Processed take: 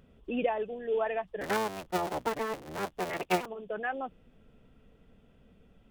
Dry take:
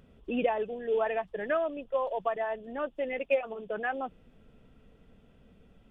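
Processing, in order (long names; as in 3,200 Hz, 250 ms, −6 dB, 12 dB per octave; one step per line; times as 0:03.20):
0:01.41–0:03.46: sub-harmonics by changed cycles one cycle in 3, inverted
level −1.5 dB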